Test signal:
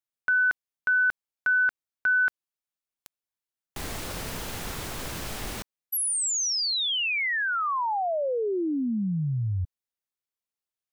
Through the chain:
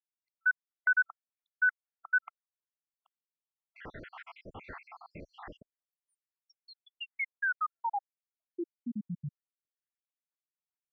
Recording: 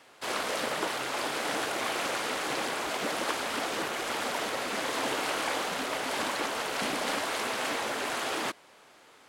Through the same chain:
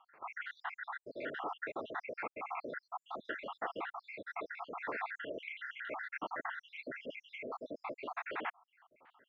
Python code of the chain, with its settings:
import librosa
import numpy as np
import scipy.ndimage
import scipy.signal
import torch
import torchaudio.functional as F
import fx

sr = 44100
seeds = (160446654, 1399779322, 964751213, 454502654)

y = fx.spec_dropout(x, sr, seeds[0], share_pct=78)
y = scipy.signal.sosfilt(scipy.signal.butter(4, 2100.0, 'lowpass', fs=sr, output='sos'), y)
y = fx.tilt_eq(y, sr, slope=2.0)
y = y * librosa.db_to_amplitude(-2.5)